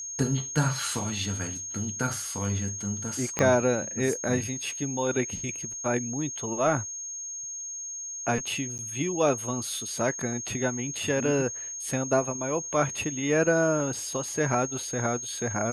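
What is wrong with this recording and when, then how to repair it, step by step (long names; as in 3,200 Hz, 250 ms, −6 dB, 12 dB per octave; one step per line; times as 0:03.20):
whistle 6,500 Hz −34 dBFS
0:03.39: click −10 dBFS
0:08.78–0:08.79: drop-out 9 ms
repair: click removal
notch filter 6,500 Hz, Q 30
repair the gap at 0:08.78, 9 ms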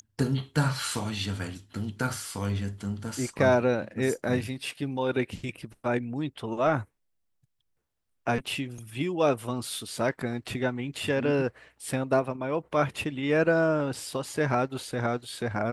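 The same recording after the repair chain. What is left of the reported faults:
0:03.39: click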